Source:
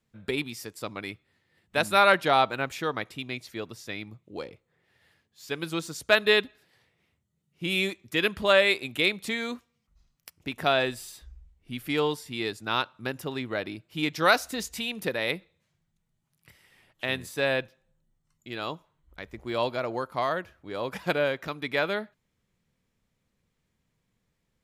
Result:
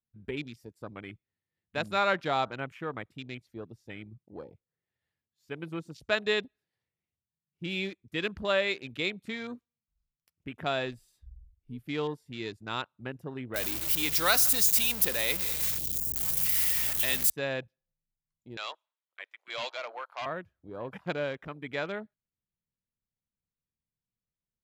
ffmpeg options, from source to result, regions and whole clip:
ffmpeg -i in.wav -filter_complex "[0:a]asettb=1/sr,asplit=3[link_01][link_02][link_03];[link_01]atrim=end=13.544[link_04];[link_02]atrim=start=13.54:end=17.3,asetpts=PTS-STARTPTS,afade=type=in:duration=0.004:curve=qsin,afade=type=out:start_time=3.756:duration=0.004:curve=qsin,aeval=exprs='val(0)+0.5*0.0398*sgn(val(0))':channel_layout=same,aemphasis=mode=production:type=riaa,aeval=exprs='val(0)+0.00562*(sin(2*PI*60*n/s)+sin(2*PI*2*60*n/s)/2+sin(2*PI*3*60*n/s)/3+sin(2*PI*4*60*n/s)/4+sin(2*PI*5*60*n/s)/5)':channel_layout=same[link_05];[link_03]atrim=start=17.296[link_06];[link_04][link_05]acrossfade=duration=0.004:curve1=hsin:curve2=qsin[link_07];[link_07][link_06]acrossfade=duration=0.004:curve1=qsin:curve2=hsin,asettb=1/sr,asplit=3[link_08][link_09][link_10];[link_08]atrim=end=18.574[link_11];[link_09]atrim=start=18.57:end=20.26,asetpts=PTS-STARTPTS,afade=type=in:duration=0.004:curve=qsin,afade=type=out:start_time=1.686:duration=0.004:curve=qsin,highpass=frequency=570:width=0.5412,highpass=frequency=570:width=1.3066,volume=28dB,asoftclip=hard,volume=-28dB,equalizer=frequency=3100:width_type=o:width=2:gain=10.5[link_12];[link_10]atrim=start=20.256[link_13];[link_11][link_12]acrossfade=duration=0.004:curve1=hsin:curve2=qsin[link_14];[link_14][link_13]acrossfade=duration=0.004:curve1=qsin:curve2=hsin,afwtdn=0.0112,lowshelf=frequency=220:gain=6.5,volume=-7.5dB" out.wav

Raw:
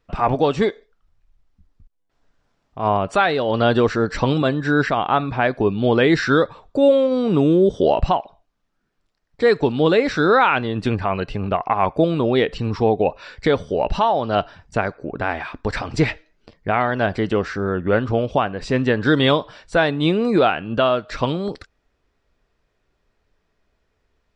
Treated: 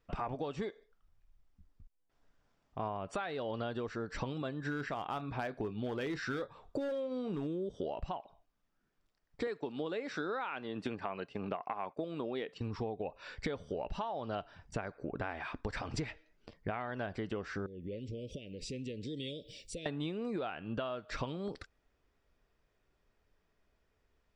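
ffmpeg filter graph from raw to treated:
ffmpeg -i in.wav -filter_complex "[0:a]asettb=1/sr,asplit=3[link_01][link_02][link_03];[link_01]atrim=end=4.614[link_04];[link_02]atrim=start=4.61:end=7.47,asetpts=PTS-STARTPTS,afade=type=in:duration=0.004:curve=qsin,afade=type=out:start_time=2.856:duration=0.004:curve=qsin,asoftclip=type=hard:threshold=-10.5dB,asplit=2[link_05][link_06];[link_06]adelay=28,volume=-13.5dB[link_07];[link_05][link_07]amix=inputs=2:normalize=0,atrim=end_sample=126126[link_08];[link_03]atrim=start=7.466[link_09];[link_04][link_08]acrossfade=duration=0.004:curve1=hsin:curve2=qsin[link_10];[link_10][link_09]acrossfade=duration=0.004:curve1=qsin:curve2=hsin,asettb=1/sr,asplit=3[link_11][link_12][link_13];[link_11]atrim=end=9.474[link_14];[link_12]atrim=start=9.47:end=12.61,asetpts=PTS-STARTPTS,afade=type=in:duration=0.004:curve=qsin,afade=type=out:start_time=3.136:duration=0.004:curve=qsin,highpass=200,agate=range=-33dB:threshold=-31dB:ratio=3:release=100:detection=peak[link_15];[link_13]atrim=start=12.606[link_16];[link_14][link_15]acrossfade=duration=0.004:curve1=hsin:curve2=qsin[link_17];[link_17][link_16]acrossfade=duration=0.004:curve1=qsin:curve2=hsin,asettb=1/sr,asplit=3[link_18][link_19][link_20];[link_18]atrim=end=17.664[link_21];[link_19]atrim=start=17.66:end=19.86,asetpts=PTS-STARTPTS,afade=type=in:duration=0.004:curve=qsin,afade=type=out:start_time=2.196:duration=0.004:curve=qsin,aemphasis=mode=production:type=50fm,acompressor=threshold=-35dB:ratio=3:attack=3.2:release=140:knee=1:detection=peak,asuperstop=centerf=1100:order=12:qfactor=0.67[link_22];[link_20]atrim=start=19.856[link_23];[link_21][link_22]acrossfade=duration=0.004:curve1=hsin:curve2=qsin[link_24];[link_24][link_23]acrossfade=duration=0.004:curve1=qsin:curve2=hsin,bandreject=frequency=4100:width=20,acompressor=threshold=-27dB:ratio=16,volume=-7dB" out.wav

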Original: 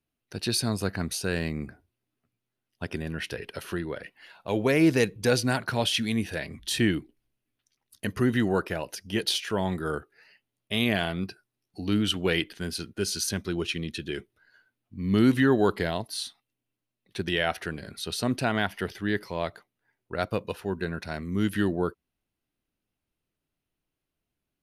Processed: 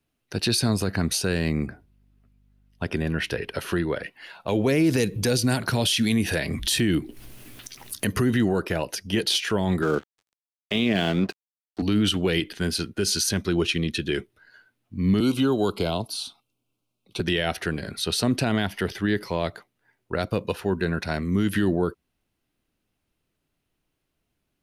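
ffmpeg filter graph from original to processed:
ffmpeg -i in.wav -filter_complex "[0:a]asettb=1/sr,asplit=3[link_01][link_02][link_03];[link_01]atrim=end=1.664[link_04];[link_02]atrim=start=1.66:end=3.63,asetpts=PTS-STARTPTS,afade=type=in:duration=0.004:curve=qsin,afade=type=out:start_time=1.966:duration=0.004:curve=qsin,equalizer=frequency=8200:width=0.4:gain=-3,aeval=exprs='val(0)+0.000447*(sin(2*PI*50*n/s)+sin(2*PI*2*50*n/s)/2+sin(2*PI*3*50*n/s)/3+sin(2*PI*4*50*n/s)/4+sin(2*PI*5*50*n/s)/5)':channel_layout=same[link_05];[link_03]atrim=start=3.626[link_06];[link_04][link_05]acrossfade=duration=0.004:curve1=hsin:curve2=qsin[link_07];[link_07][link_06]acrossfade=duration=0.004:curve1=qsin:curve2=hsin,asettb=1/sr,asplit=3[link_08][link_09][link_10];[link_08]atrim=end=4.844[link_11];[link_09]atrim=start=4.84:end=8.31,asetpts=PTS-STARTPTS,afade=type=in:duration=0.004:curve=qsin,afade=type=out:start_time=3.466:duration=0.004:curve=qsin,highshelf=frequency=8200:gain=7.5,acompressor=mode=upward:threshold=-26dB:ratio=2.5:attack=3.2:release=140:knee=2.83:detection=peak[link_12];[link_10]atrim=start=8.306[link_13];[link_11][link_12]acrossfade=duration=0.004:curve1=hsin:curve2=qsin[link_14];[link_14][link_13]acrossfade=duration=0.004:curve1=qsin:curve2=hsin,asettb=1/sr,asplit=3[link_15][link_16][link_17];[link_15]atrim=end=9.824[link_18];[link_16]atrim=start=9.82:end=11.82,asetpts=PTS-STARTPTS,afade=type=in:duration=0.004:curve=qsin,afade=type=out:start_time=1.996:duration=0.004:curve=qsin,highpass=170,lowpass=3600,acontrast=38,aeval=exprs='sgn(val(0))*max(abs(val(0))-0.00668,0)':channel_layout=same[link_19];[link_17]atrim=start=11.816[link_20];[link_18][link_19]acrossfade=duration=0.004:curve1=hsin:curve2=qsin[link_21];[link_21][link_20]acrossfade=duration=0.004:curve1=qsin:curve2=hsin,asettb=1/sr,asplit=3[link_22][link_23][link_24];[link_22]atrim=end=15.204[link_25];[link_23]atrim=start=15.2:end=17.2,asetpts=PTS-STARTPTS,afade=type=in:duration=0.004:curve=qsin,afade=type=out:start_time=1.996:duration=0.004:curve=qsin,asuperstop=centerf=1800:order=4:qfactor=2,acrossover=split=290|2300[link_26][link_27][link_28];[link_26]acompressor=threshold=-34dB:ratio=4[link_29];[link_27]acompressor=threshold=-31dB:ratio=4[link_30];[link_28]acompressor=threshold=-38dB:ratio=4[link_31];[link_29][link_30][link_31]amix=inputs=3:normalize=0[link_32];[link_24]atrim=start=17.196[link_33];[link_25][link_32]acrossfade=duration=0.004:curve1=hsin:curve2=qsin[link_34];[link_34][link_33]acrossfade=duration=0.004:curve1=qsin:curve2=hsin,highshelf=frequency=11000:gain=-4,acrossover=split=470|3000[link_35][link_36][link_37];[link_36]acompressor=threshold=-33dB:ratio=6[link_38];[link_35][link_38][link_37]amix=inputs=3:normalize=0,alimiter=limit=-20.5dB:level=0:latency=1:release=41,volume=7.5dB" out.wav

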